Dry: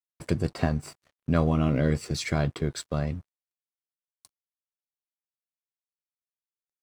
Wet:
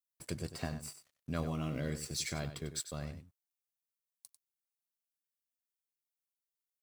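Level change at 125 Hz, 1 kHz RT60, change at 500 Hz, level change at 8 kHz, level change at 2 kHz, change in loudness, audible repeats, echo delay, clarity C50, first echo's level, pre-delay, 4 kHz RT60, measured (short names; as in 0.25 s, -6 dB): -13.5 dB, none, -13.0 dB, -0.5 dB, -10.0 dB, -12.0 dB, 1, 96 ms, none, -11.0 dB, none, none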